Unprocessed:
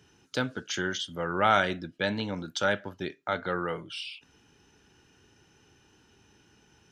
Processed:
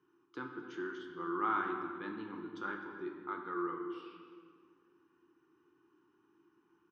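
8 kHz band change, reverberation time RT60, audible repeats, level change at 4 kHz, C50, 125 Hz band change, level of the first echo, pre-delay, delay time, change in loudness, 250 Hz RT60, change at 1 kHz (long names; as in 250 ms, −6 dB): below −30 dB, 1.9 s, 1, −24.0 dB, 4.5 dB, −19.5 dB, −17.0 dB, 6 ms, 256 ms, −9.5 dB, 2.3 s, −8.0 dB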